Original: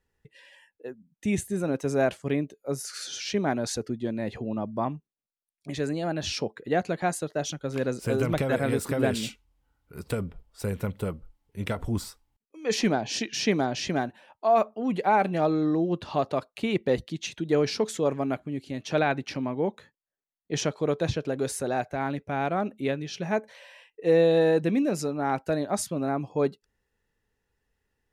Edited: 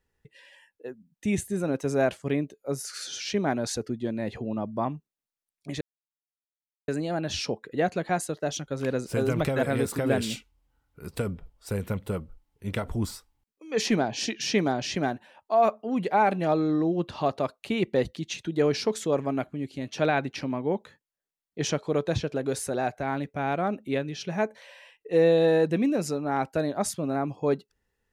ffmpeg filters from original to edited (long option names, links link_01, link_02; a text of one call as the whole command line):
ffmpeg -i in.wav -filter_complex "[0:a]asplit=2[link_01][link_02];[link_01]atrim=end=5.81,asetpts=PTS-STARTPTS,afade=type=out:start_time=5.806:duration=0.004:curve=hsin,apad=pad_dur=1.07[link_03];[link_02]atrim=start=5.81,asetpts=PTS-STARTPTS,afade=type=in:duration=0.004:curve=hsin[link_04];[link_03][link_04]concat=n=2:v=0:a=1" out.wav